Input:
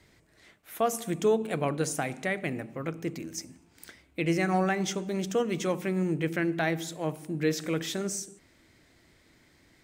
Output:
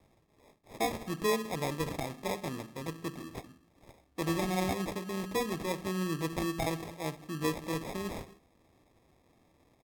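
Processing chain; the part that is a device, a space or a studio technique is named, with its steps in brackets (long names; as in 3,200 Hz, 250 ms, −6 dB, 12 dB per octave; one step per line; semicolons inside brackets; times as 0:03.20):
crushed at another speed (tape speed factor 1.25×; decimation without filtering 24×; tape speed factor 0.8×)
level −5 dB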